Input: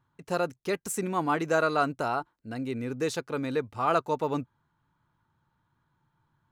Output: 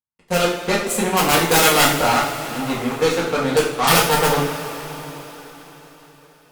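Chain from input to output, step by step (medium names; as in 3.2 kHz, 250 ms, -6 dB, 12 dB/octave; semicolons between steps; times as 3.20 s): integer overflow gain 17.5 dB; Chebyshev shaper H 4 -22 dB, 5 -9 dB, 7 -8 dB, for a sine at -17.5 dBFS; two-slope reverb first 0.48 s, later 4.6 s, from -17 dB, DRR -6 dB; trim +3 dB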